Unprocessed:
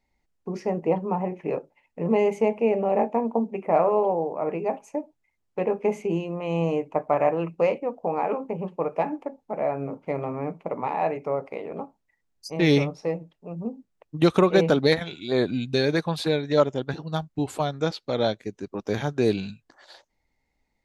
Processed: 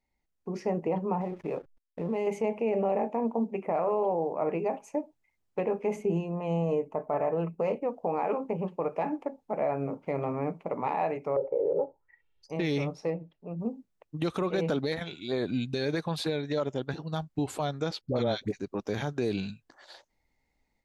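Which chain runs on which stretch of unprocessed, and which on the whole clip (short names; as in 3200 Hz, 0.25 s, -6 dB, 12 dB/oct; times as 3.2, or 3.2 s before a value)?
1.21–2.27 backlash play -45 dBFS + compressor 2.5:1, threshold -29 dBFS
5.96–7.82 bell 3500 Hz -8.5 dB 2.4 oct + notch 2300 Hz, Q 24 + comb 4.6 ms, depth 42%
11.36–12.5 comb 2.2 ms, depth 93% + envelope low-pass 560–3600 Hz down, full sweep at -32.5 dBFS
13.1–13.6 LPF 3700 Hz + bell 1200 Hz -3.5 dB 2.1 oct
18.01–18.6 low shelf 230 Hz +7 dB + dispersion highs, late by 75 ms, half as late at 660 Hz
whole clip: AGC gain up to 6.5 dB; limiter -12 dBFS; gain -7.5 dB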